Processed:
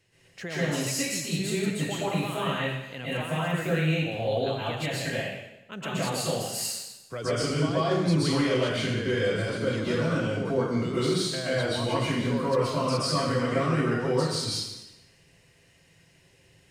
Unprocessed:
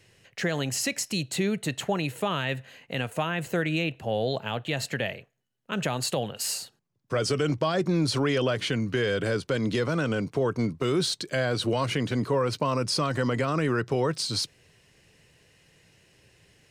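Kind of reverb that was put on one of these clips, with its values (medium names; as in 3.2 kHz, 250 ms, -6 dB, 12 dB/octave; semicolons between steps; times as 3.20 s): plate-style reverb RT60 0.96 s, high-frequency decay 0.95×, pre-delay 110 ms, DRR -9 dB; trim -9.5 dB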